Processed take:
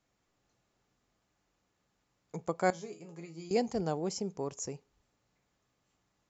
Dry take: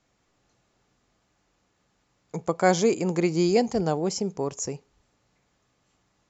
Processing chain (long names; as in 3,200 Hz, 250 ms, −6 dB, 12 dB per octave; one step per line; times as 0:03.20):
0:02.70–0:03.51: resonators tuned to a chord C#3 minor, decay 0.22 s
level −8 dB